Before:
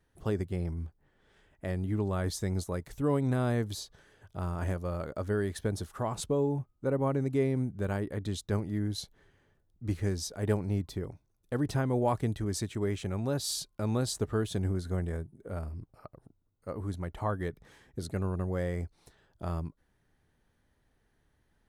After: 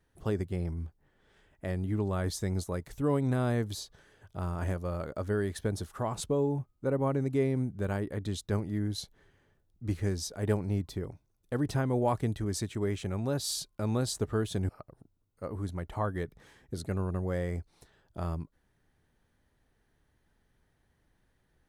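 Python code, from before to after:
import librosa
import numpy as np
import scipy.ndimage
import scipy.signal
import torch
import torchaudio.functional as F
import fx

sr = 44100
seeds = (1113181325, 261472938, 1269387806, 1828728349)

y = fx.edit(x, sr, fx.cut(start_s=14.69, length_s=1.25), tone=tone)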